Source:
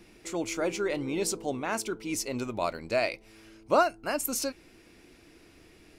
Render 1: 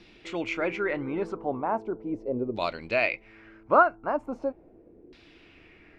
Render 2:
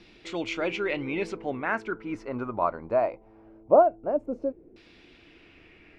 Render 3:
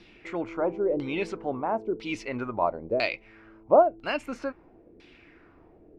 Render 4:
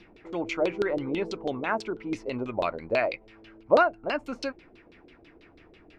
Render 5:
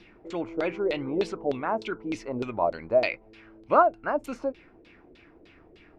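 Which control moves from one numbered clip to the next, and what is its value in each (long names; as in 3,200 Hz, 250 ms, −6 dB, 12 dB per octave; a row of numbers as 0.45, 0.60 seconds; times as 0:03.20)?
auto-filter low-pass, speed: 0.39, 0.21, 1, 6.1, 3.3 Hertz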